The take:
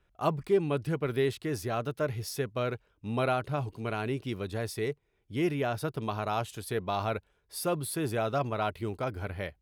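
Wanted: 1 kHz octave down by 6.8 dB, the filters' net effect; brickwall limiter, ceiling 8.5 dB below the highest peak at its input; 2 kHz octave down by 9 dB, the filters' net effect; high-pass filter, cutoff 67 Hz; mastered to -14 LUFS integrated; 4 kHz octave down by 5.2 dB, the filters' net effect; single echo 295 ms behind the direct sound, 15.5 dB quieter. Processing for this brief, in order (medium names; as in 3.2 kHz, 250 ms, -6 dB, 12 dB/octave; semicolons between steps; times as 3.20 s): high-pass 67 Hz; peaking EQ 1 kHz -8 dB; peaking EQ 2 kHz -8.5 dB; peaking EQ 4 kHz -3.5 dB; peak limiter -25.5 dBFS; delay 295 ms -15.5 dB; trim +22 dB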